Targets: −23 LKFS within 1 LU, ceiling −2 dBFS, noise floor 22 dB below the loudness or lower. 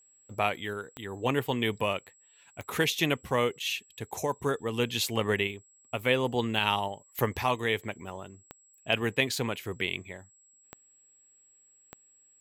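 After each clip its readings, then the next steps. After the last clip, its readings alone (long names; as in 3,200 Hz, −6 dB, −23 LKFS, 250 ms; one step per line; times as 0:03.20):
number of clicks 6; interfering tone 7,700 Hz; level of the tone −59 dBFS; integrated loudness −30.0 LKFS; sample peak −9.5 dBFS; target loudness −23.0 LKFS
→ click removal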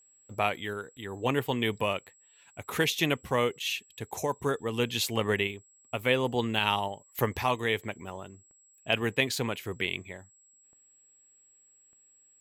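number of clicks 0; interfering tone 7,700 Hz; level of the tone −59 dBFS
→ notch filter 7,700 Hz, Q 30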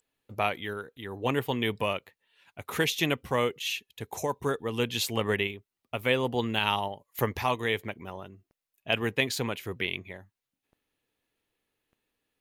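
interfering tone none found; integrated loudness −30.0 LKFS; sample peak −9.5 dBFS; target loudness −23.0 LKFS
→ level +7 dB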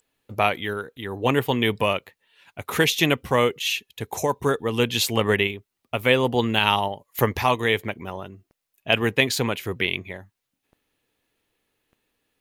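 integrated loudness −23.0 LKFS; sample peak −2.5 dBFS; background noise floor −81 dBFS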